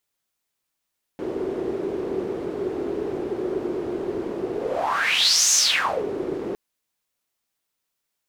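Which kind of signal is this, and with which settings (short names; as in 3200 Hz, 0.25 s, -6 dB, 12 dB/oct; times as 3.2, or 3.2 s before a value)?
whoosh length 5.36 s, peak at 4.34, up 1.04 s, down 0.56 s, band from 380 Hz, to 6400 Hz, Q 6.1, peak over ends 10 dB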